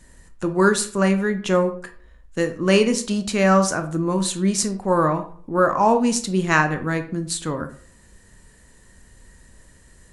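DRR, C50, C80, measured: 7.0 dB, 12.0 dB, 16.0 dB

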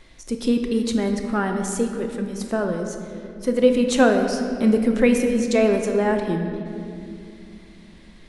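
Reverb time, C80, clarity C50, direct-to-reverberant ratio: 2.7 s, 6.5 dB, 5.5 dB, 4.0 dB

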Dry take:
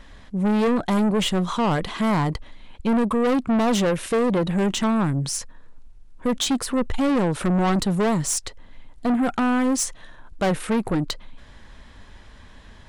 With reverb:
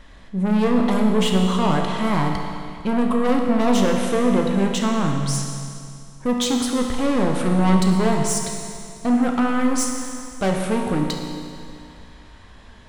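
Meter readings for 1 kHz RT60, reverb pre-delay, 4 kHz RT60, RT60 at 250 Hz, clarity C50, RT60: 2.4 s, 16 ms, 2.3 s, 2.4 s, 3.0 dB, 2.4 s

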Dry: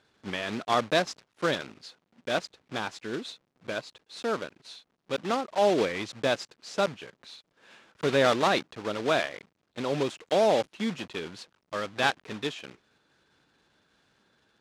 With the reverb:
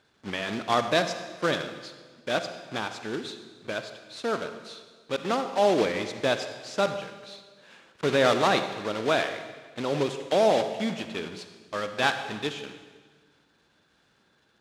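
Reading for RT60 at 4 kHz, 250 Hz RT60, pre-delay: 1.4 s, 1.6 s, 40 ms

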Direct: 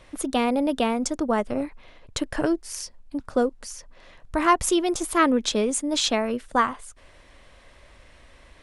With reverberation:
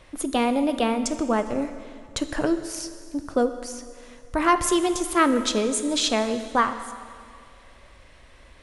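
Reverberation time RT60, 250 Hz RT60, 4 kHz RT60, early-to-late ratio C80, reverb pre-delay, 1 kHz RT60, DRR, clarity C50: 2.2 s, 2.2 s, 2.1 s, 11.5 dB, 5 ms, 2.2 s, 9.5 dB, 11.0 dB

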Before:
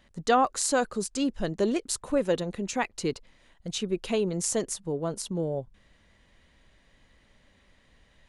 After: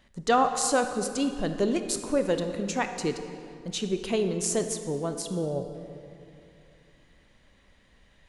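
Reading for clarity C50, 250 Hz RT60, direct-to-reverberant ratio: 8.0 dB, 2.9 s, 7.0 dB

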